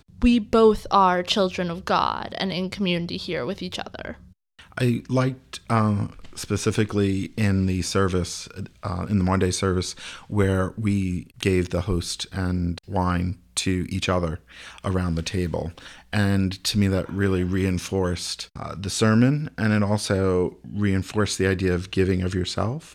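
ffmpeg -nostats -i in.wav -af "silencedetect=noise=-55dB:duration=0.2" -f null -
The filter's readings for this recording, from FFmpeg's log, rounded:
silence_start: 4.33
silence_end: 4.59 | silence_duration: 0.26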